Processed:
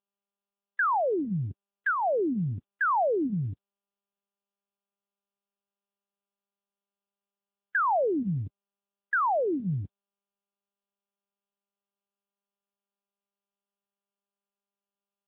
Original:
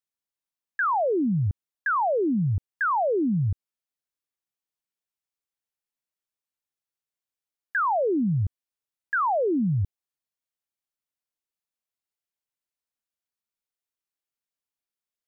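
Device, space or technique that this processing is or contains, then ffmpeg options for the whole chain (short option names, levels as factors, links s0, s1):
mobile call with aggressive noise cancelling: -af "highpass=120,afftdn=nr=33:nf=-43" -ar 8000 -c:a libopencore_amrnb -b:a 10200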